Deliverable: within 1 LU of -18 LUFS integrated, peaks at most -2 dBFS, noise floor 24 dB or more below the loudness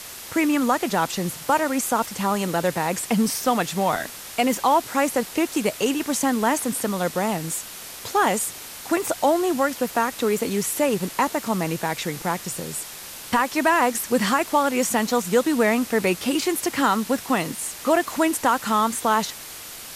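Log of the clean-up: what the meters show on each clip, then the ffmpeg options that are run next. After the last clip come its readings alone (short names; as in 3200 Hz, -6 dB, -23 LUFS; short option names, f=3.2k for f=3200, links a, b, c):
noise floor -38 dBFS; noise floor target -47 dBFS; loudness -22.5 LUFS; peak -8.0 dBFS; loudness target -18.0 LUFS
-> -af "afftdn=nr=9:nf=-38"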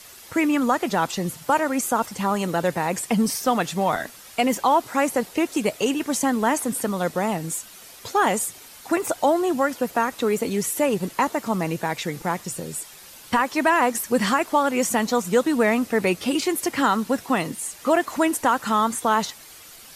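noise floor -45 dBFS; noise floor target -47 dBFS
-> -af "afftdn=nr=6:nf=-45"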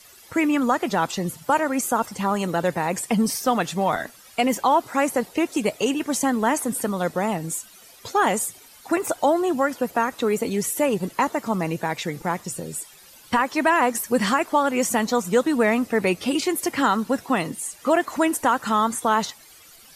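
noise floor -49 dBFS; loudness -23.0 LUFS; peak -8.0 dBFS; loudness target -18.0 LUFS
-> -af "volume=5dB"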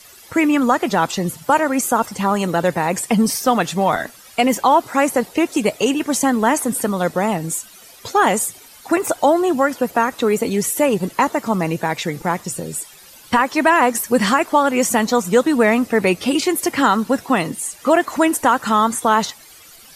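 loudness -18.0 LUFS; peak -3.0 dBFS; noise floor -44 dBFS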